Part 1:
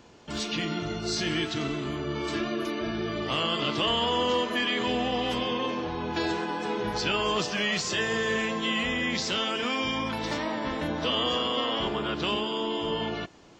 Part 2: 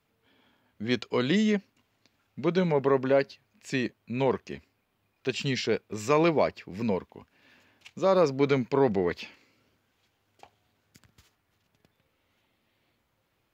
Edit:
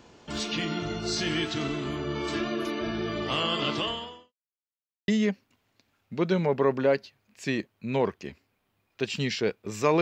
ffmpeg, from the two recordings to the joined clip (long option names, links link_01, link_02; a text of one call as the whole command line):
ffmpeg -i cue0.wav -i cue1.wav -filter_complex "[0:a]apad=whole_dur=10.01,atrim=end=10.01,asplit=2[link_01][link_02];[link_01]atrim=end=4.33,asetpts=PTS-STARTPTS,afade=type=out:start_time=3.73:duration=0.6:curve=qua[link_03];[link_02]atrim=start=4.33:end=5.08,asetpts=PTS-STARTPTS,volume=0[link_04];[1:a]atrim=start=1.34:end=6.27,asetpts=PTS-STARTPTS,afade=type=in:duration=0.004:curve=hsin[link_05];[link_03][link_04][link_05]concat=n=3:v=0:a=1" out.wav